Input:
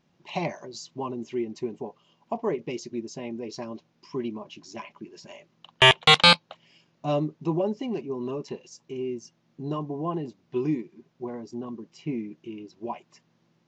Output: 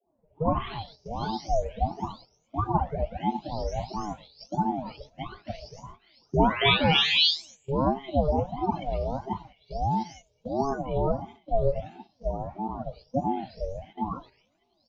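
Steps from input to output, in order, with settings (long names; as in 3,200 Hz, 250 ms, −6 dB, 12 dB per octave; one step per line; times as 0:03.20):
every frequency bin delayed by itself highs late, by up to 743 ms
Butterworth band-reject 880 Hz, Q 6.7
high-frequency loss of the air 100 metres
on a send: feedback echo with a low-pass in the loop 89 ms, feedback 47%, low-pass 1,100 Hz, level −20.5 dB
on the sum: downsampling to 16,000 Hz
flat-topped bell 1,500 Hz −12 dB
in parallel at +2.5 dB: speech leveller within 4 dB 0.5 s
on the sum: noise gate −43 dBFS, range −10 dB
wrong playback speed 48 kHz file played as 44.1 kHz
ring modulator whose carrier an LFO sweeps 410 Hz, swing 35%, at 1.5 Hz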